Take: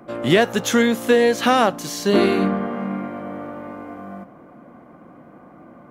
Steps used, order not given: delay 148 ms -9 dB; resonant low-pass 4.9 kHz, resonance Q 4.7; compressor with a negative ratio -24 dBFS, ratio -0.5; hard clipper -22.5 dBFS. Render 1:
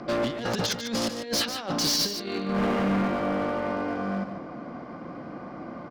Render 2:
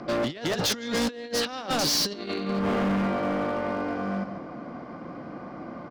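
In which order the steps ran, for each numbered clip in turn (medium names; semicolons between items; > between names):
resonant low-pass > compressor with a negative ratio > hard clipper > delay; delay > compressor with a negative ratio > resonant low-pass > hard clipper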